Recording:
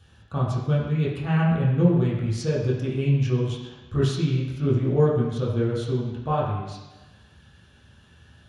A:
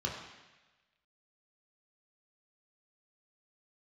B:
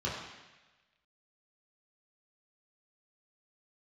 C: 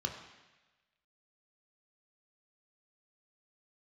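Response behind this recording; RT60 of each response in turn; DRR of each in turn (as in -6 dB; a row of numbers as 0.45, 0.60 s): B; 1.1, 1.1, 1.1 s; -2.0, -7.0, 2.5 dB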